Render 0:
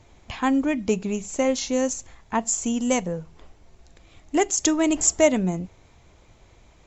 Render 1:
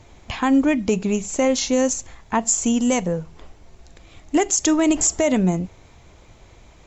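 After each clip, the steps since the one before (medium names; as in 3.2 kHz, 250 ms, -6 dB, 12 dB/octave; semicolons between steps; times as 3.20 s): peak limiter -14 dBFS, peak gain reduction 9.5 dB; trim +5.5 dB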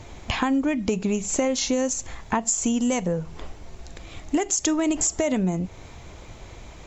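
compression 4:1, threshold -28 dBFS, peak gain reduction 12.5 dB; trim +6 dB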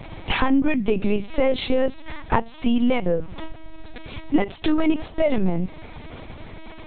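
LPC vocoder at 8 kHz pitch kept; trim +4.5 dB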